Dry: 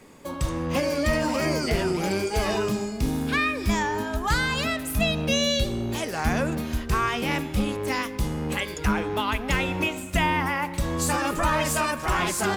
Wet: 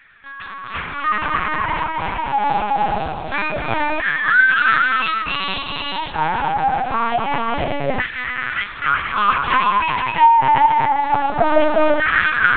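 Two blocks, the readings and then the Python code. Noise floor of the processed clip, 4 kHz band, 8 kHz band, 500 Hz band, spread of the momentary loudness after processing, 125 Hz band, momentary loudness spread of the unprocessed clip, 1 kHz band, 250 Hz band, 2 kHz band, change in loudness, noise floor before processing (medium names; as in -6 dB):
-32 dBFS, +2.0 dB, under -40 dB, +4.0 dB, 10 LU, -5.0 dB, 5 LU, +13.0 dB, -2.5 dB, +11.0 dB, +7.5 dB, -35 dBFS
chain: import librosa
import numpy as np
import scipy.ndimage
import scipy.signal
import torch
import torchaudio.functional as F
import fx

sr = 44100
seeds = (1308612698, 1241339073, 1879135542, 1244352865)

p1 = x + fx.echo_multitap(x, sr, ms=(251, 260, 381, 382, 477), db=(-9.5, -7.0, -6.0, -15.0, -4.0), dry=0)
p2 = fx.rev_schroeder(p1, sr, rt60_s=1.1, comb_ms=30, drr_db=15.0)
p3 = fx.filter_lfo_highpass(p2, sr, shape='saw_down', hz=0.25, low_hz=570.0, high_hz=1700.0, q=6.0)
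p4 = fx.lpc_vocoder(p3, sr, seeds[0], excitation='pitch_kept', order=8)
y = p4 * 10.0 ** (1.0 / 20.0)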